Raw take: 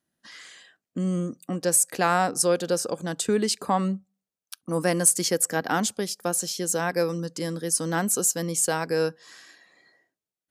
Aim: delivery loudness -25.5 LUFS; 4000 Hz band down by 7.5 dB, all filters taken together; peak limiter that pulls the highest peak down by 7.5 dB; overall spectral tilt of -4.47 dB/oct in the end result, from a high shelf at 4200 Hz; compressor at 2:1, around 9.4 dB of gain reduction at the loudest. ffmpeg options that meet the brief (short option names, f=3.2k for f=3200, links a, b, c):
-af "equalizer=f=4k:t=o:g=-5.5,highshelf=f=4.2k:g=-6.5,acompressor=threshold=-36dB:ratio=2,volume=11dB,alimiter=limit=-15dB:level=0:latency=1"